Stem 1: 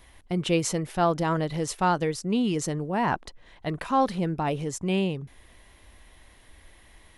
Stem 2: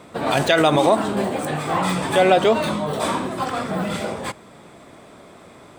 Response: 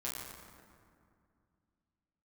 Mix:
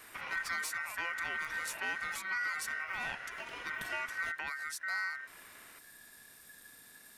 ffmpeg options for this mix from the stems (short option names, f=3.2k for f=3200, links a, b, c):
-filter_complex "[0:a]aemphasis=mode=production:type=75fm,asoftclip=type=tanh:threshold=-14.5dB,volume=-4.5dB[a];[1:a]acompressor=threshold=-23dB:ratio=6,volume=-10dB[b];[a][b]amix=inputs=2:normalize=0,acrossover=split=260[c][d];[d]acompressor=threshold=-44dB:ratio=2[e];[c][e]amix=inputs=2:normalize=0,aeval=exprs='val(0)*sin(2*PI*1700*n/s)':c=same"